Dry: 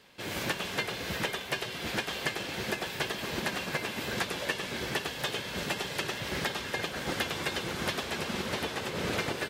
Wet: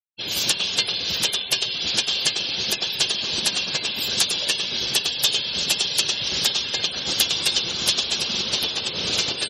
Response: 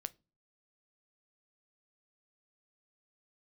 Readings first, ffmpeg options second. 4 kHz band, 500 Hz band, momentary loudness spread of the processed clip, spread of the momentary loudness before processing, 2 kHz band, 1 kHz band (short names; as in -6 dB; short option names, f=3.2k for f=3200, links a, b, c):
+16.5 dB, 0.0 dB, 3 LU, 2 LU, +4.0 dB, 0.0 dB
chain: -af "afftfilt=real='re*gte(hypot(re,im),0.01)':imag='im*gte(hypot(re,im),0.01)':win_size=1024:overlap=0.75,aexciter=amount=8:drive=6.4:freq=2.9k"